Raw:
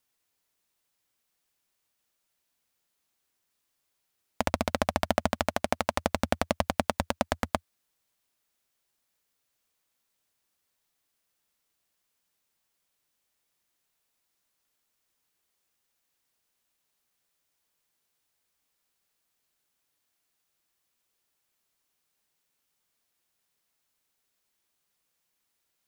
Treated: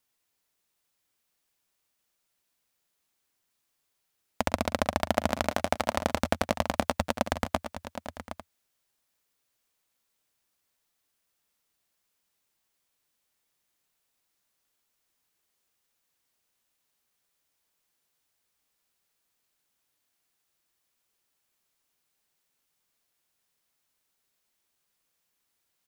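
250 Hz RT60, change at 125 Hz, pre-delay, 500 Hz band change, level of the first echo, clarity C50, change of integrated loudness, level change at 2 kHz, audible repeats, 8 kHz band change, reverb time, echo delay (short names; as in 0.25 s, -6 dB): none, +0.5 dB, none, +0.5 dB, -17.0 dB, none, +0.5 dB, +0.5 dB, 3, +0.5 dB, none, 0.112 s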